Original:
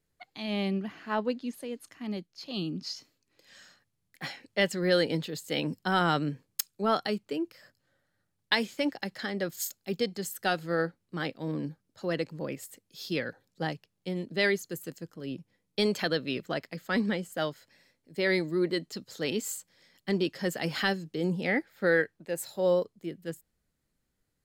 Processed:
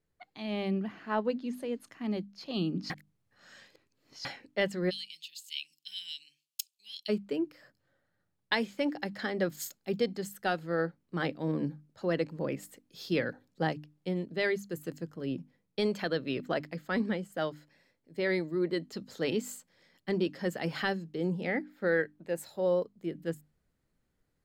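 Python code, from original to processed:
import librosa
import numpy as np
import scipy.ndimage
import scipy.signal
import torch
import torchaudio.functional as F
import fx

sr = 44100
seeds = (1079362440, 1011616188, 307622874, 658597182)

y = fx.ellip_highpass(x, sr, hz=2700.0, order=4, stop_db=50, at=(4.89, 7.08), fade=0.02)
y = fx.edit(y, sr, fx.reverse_span(start_s=2.9, length_s=1.35), tone=tone)
y = fx.high_shelf(y, sr, hz=3000.0, db=-9.0)
y = fx.hum_notches(y, sr, base_hz=50, count=6)
y = fx.rider(y, sr, range_db=3, speed_s=0.5)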